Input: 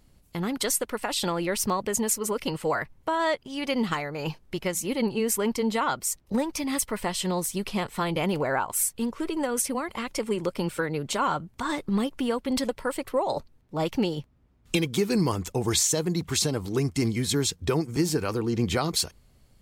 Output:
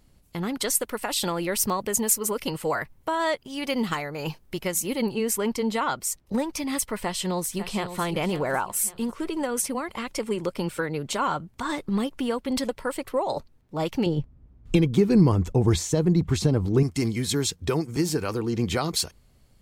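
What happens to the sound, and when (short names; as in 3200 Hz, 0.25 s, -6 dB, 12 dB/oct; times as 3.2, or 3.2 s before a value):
0.75–5.15 high shelf 11000 Hz +11.5 dB
6.97–8.01 echo throw 0.55 s, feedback 35%, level -10.5 dB
14.06–16.83 tilt -3 dB/oct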